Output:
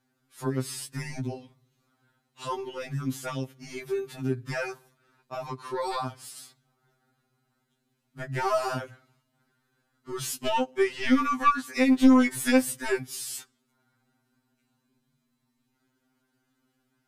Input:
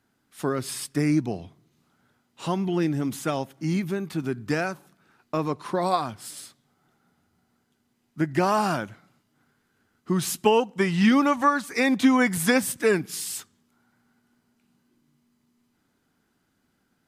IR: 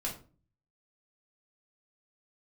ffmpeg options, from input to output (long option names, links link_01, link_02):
-af "aeval=exprs='0.531*(cos(1*acos(clip(val(0)/0.531,-1,1)))-cos(1*PI/2))+0.211*(cos(4*acos(clip(val(0)/0.531,-1,1)))-cos(4*PI/2))+0.0473*(cos(5*acos(clip(val(0)/0.531,-1,1)))-cos(5*PI/2))+0.0944*(cos(6*acos(clip(val(0)/0.531,-1,1)))-cos(6*PI/2))+0.00335*(cos(8*acos(clip(val(0)/0.531,-1,1)))-cos(8*PI/2))':channel_layout=same,afftfilt=real='re*2.45*eq(mod(b,6),0)':imag='im*2.45*eq(mod(b,6),0)':win_size=2048:overlap=0.75,volume=-4.5dB"